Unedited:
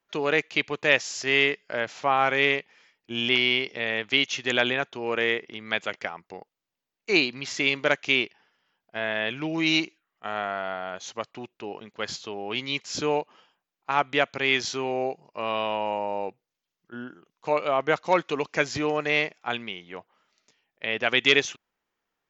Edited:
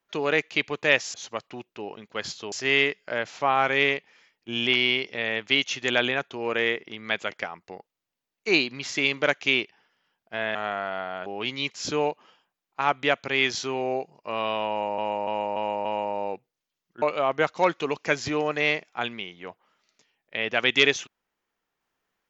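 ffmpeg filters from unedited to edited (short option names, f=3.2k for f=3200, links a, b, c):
-filter_complex "[0:a]asplit=10[a][b][c][d][e][f][g][h][i][j];[a]atrim=end=1.142[k];[b]atrim=start=10.978:end=12.362[l];[c]atrim=start=1.138:end=9.172[m];[d]atrim=start=10.268:end=10.982[n];[e]atrim=start=12.358:end=16.082[o];[f]atrim=start=15.788:end=16.082[p];[g]atrim=start=15.788:end=16.082[q];[h]atrim=start=15.788:end=16.082[r];[i]atrim=start=15.788:end=16.962[s];[j]atrim=start=17.508[t];[k][l]acrossfade=d=0.004:c1=hsin:c2=hsin[u];[u][m]acrossfade=d=0.004:c1=hsin:c2=hsin[v];[v][n]acrossfade=d=0.004:c1=hsin:c2=hsin[w];[w][o]acrossfade=d=0.004:c1=hsin:c2=hsin[x];[x][p]acrossfade=d=0.004:c1=hsin:c2=hsin[y];[y][q]acrossfade=d=0.004:c1=hsin:c2=hsin[z];[z][r]acrossfade=d=0.004:c1=hsin:c2=hsin[aa];[aa][s]acrossfade=d=0.004:c1=hsin:c2=hsin[ab];[ab][t]acrossfade=d=0.004:c1=hsin:c2=hsin"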